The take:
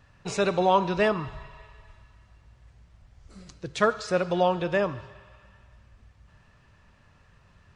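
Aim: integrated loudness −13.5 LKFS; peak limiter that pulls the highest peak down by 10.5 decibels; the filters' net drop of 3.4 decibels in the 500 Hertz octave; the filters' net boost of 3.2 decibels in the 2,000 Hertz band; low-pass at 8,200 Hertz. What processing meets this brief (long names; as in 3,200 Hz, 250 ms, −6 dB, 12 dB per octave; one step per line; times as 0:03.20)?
low-pass filter 8,200 Hz
parametric band 500 Hz −4.5 dB
parametric band 2,000 Hz +4.5 dB
level +17 dB
brickwall limiter −2 dBFS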